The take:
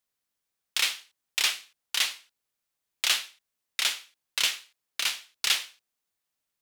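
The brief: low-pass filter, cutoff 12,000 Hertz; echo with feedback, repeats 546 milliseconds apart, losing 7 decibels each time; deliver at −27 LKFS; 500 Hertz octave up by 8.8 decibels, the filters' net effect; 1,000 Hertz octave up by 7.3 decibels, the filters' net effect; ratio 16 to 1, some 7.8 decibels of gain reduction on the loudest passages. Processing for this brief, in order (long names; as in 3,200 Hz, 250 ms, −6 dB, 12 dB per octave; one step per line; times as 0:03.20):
low-pass filter 12,000 Hz
parametric band 500 Hz +8.5 dB
parametric band 1,000 Hz +7.5 dB
downward compressor 16 to 1, threshold −27 dBFS
repeating echo 546 ms, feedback 45%, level −7 dB
level +7 dB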